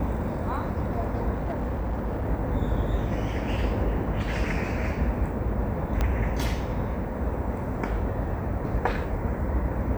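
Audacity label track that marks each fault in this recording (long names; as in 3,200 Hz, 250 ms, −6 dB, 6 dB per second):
1.330000	2.270000	clipping −24.5 dBFS
6.010000	6.010000	click −13 dBFS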